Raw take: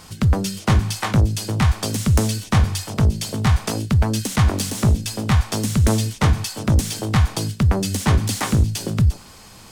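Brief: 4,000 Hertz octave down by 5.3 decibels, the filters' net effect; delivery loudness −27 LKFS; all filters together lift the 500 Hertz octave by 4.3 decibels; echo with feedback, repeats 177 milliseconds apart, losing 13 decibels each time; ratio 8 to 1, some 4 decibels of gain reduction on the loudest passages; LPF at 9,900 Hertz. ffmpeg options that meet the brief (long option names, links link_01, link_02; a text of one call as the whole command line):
ffmpeg -i in.wav -af "lowpass=9900,equalizer=frequency=500:width_type=o:gain=5.5,equalizer=frequency=4000:width_type=o:gain=-7,acompressor=threshold=-15dB:ratio=8,aecho=1:1:177|354|531:0.224|0.0493|0.0108,volume=-4.5dB" out.wav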